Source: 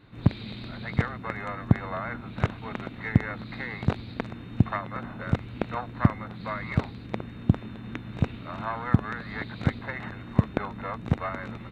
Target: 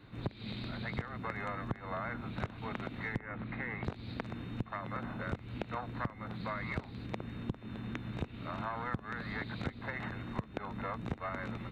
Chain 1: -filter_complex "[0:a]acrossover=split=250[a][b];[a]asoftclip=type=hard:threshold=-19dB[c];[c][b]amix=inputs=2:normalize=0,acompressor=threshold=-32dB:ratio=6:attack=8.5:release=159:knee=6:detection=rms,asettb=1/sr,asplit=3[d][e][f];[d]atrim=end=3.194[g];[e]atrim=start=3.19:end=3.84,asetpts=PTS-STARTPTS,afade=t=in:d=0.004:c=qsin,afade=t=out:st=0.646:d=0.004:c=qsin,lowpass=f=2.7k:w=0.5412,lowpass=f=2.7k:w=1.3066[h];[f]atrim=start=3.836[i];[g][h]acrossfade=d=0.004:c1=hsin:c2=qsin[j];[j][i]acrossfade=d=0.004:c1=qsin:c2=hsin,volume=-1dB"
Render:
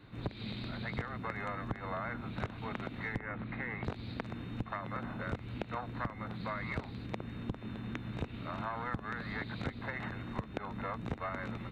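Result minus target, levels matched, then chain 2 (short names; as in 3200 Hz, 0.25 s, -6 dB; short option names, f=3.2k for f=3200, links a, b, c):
hard clip: distortion +18 dB
-filter_complex "[0:a]acrossover=split=250[a][b];[a]asoftclip=type=hard:threshold=-9.5dB[c];[c][b]amix=inputs=2:normalize=0,acompressor=threshold=-32dB:ratio=6:attack=8.5:release=159:knee=6:detection=rms,asettb=1/sr,asplit=3[d][e][f];[d]atrim=end=3.194[g];[e]atrim=start=3.19:end=3.84,asetpts=PTS-STARTPTS,afade=t=in:d=0.004:c=qsin,afade=t=out:st=0.646:d=0.004:c=qsin,lowpass=f=2.7k:w=0.5412,lowpass=f=2.7k:w=1.3066[h];[f]atrim=start=3.836[i];[g][h]acrossfade=d=0.004:c1=hsin:c2=qsin[j];[j][i]acrossfade=d=0.004:c1=qsin:c2=hsin,volume=-1dB"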